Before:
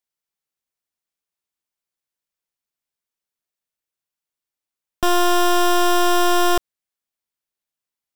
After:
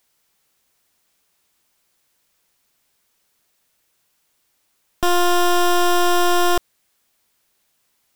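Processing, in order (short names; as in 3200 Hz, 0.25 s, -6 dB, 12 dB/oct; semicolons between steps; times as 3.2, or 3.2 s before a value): power-law curve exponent 0.7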